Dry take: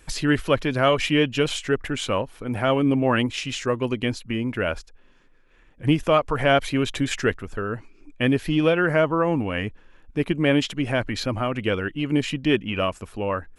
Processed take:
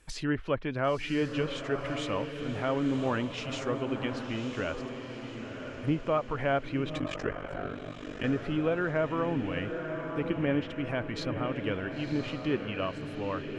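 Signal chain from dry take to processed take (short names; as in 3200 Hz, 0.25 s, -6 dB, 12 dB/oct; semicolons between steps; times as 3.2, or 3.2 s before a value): treble ducked by the level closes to 1900 Hz, closed at -16.5 dBFS; diffused feedback echo 1.014 s, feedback 48%, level -6.5 dB; 6.98–8.24 ring modulator 24 Hz; gain -9 dB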